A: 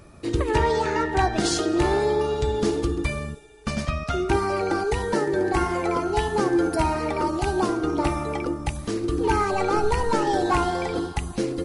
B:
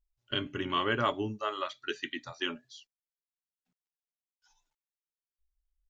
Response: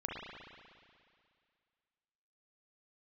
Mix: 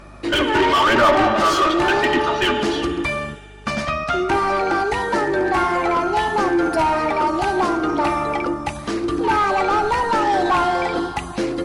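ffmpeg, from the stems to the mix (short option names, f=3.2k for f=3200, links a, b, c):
-filter_complex "[0:a]equalizer=f=450:t=o:w=0.33:g=-7.5,volume=-6.5dB[a];[1:a]lowpass=5.1k,aecho=1:1:3.3:0.98,aphaser=in_gain=1:out_gain=1:delay=2.8:decay=0.45:speed=0.96:type=sinusoidal,volume=2.5dB,asplit=2[b][c];[c]volume=-12dB[d];[2:a]atrim=start_sample=2205[e];[d][e]afir=irnorm=-1:irlink=0[f];[a][b][f]amix=inputs=3:normalize=0,asplit=2[g][h];[h]highpass=f=720:p=1,volume=26dB,asoftclip=type=tanh:threshold=-7dB[i];[g][i]amix=inputs=2:normalize=0,lowpass=f=1.9k:p=1,volume=-6dB,aeval=exprs='val(0)+0.00794*(sin(2*PI*50*n/s)+sin(2*PI*2*50*n/s)/2+sin(2*PI*3*50*n/s)/3+sin(2*PI*4*50*n/s)/4+sin(2*PI*5*50*n/s)/5)':c=same"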